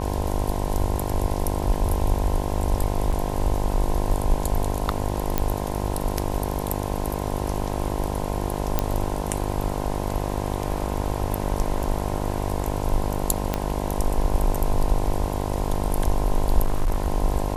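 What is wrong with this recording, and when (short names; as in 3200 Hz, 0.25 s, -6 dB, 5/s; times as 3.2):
buzz 50 Hz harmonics 21 -28 dBFS
3.12–3.13 gap 6 ms
5.38 pop -6 dBFS
8.79 pop -6 dBFS
13.54 pop -8 dBFS
16.64–17.07 clipped -16 dBFS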